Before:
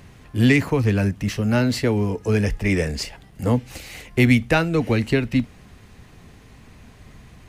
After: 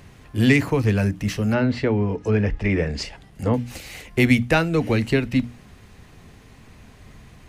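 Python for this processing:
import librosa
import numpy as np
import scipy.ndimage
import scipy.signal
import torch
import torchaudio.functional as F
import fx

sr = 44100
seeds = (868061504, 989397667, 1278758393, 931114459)

y = fx.env_lowpass_down(x, sr, base_hz=2400.0, full_db=-16.5, at=(1.52, 3.54))
y = fx.hum_notches(y, sr, base_hz=60, count=5)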